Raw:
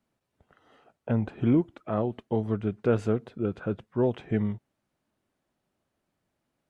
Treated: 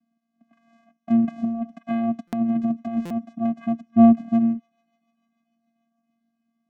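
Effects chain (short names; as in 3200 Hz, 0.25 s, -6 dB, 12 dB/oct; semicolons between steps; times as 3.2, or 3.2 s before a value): treble ducked by the level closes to 2800 Hz, closed at -23 dBFS; 1.23–3.17 negative-ratio compressor -29 dBFS, ratio -1; 3.86–4.28 tilt -3.5 dB/oct; vocoder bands 4, square 230 Hz; thin delay 0.148 s, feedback 83%, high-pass 2800 Hz, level -22 dB; stuck buffer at 2.27/3.05, samples 256, times 9; gain +7 dB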